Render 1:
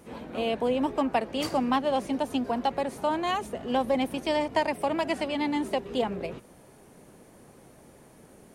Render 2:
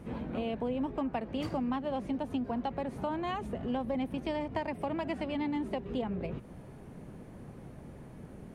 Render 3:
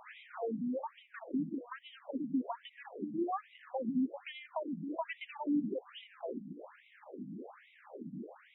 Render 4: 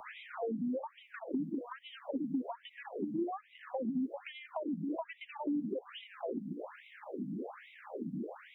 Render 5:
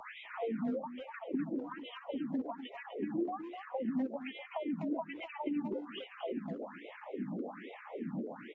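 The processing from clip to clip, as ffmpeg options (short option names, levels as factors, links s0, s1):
-af "bass=f=250:g=11,treble=f=4000:g=-11,acompressor=threshold=0.0178:ratio=2.5"
-af "alimiter=level_in=2.24:limit=0.0631:level=0:latency=1:release=377,volume=0.447,afftfilt=real='re*between(b*sr/1024,210*pow(2800/210,0.5+0.5*sin(2*PI*1.2*pts/sr))/1.41,210*pow(2800/210,0.5+0.5*sin(2*PI*1.2*pts/sr))*1.41)':imag='im*between(b*sr/1024,210*pow(2800/210,0.5+0.5*sin(2*PI*1.2*pts/sr))/1.41,210*pow(2800/210,0.5+0.5*sin(2*PI*1.2*pts/sr))*1.41)':win_size=1024:overlap=0.75,volume=2.66"
-filter_complex "[0:a]acrossover=split=270|570[s0][s1][s2];[s0]acompressor=threshold=0.00501:ratio=4[s3];[s1]acompressor=threshold=0.00501:ratio=4[s4];[s2]acompressor=threshold=0.00251:ratio=4[s5];[s3][s4][s5]amix=inputs=3:normalize=0,volume=2.11"
-filter_complex "[0:a]asplit=2[s0][s1];[s1]adelay=250,highpass=300,lowpass=3400,asoftclip=type=hard:threshold=0.0188,volume=0.447[s2];[s0][s2]amix=inputs=2:normalize=0" -ar 44100 -c:a aac -b:a 24k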